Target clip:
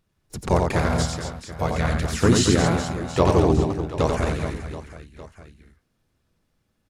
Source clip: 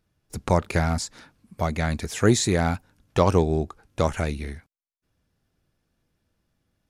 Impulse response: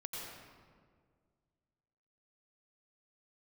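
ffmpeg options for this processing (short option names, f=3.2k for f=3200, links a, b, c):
-filter_complex "[0:a]aecho=1:1:90|225|427.5|731.2|1187:0.631|0.398|0.251|0.158|0.1,asplit=2[a][b];[b]asetrate=33038,aresample=44100,atempo=1.33484,volume=-3dB[c];[a][c]amix=inputs=2:normalize=0,volume=-1dB"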